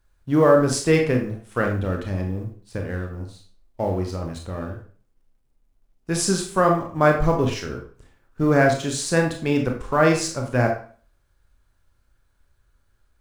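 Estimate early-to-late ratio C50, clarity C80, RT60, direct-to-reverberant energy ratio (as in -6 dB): 6.5 dB, 11.0 dB, 0.45 s, 1.5 dB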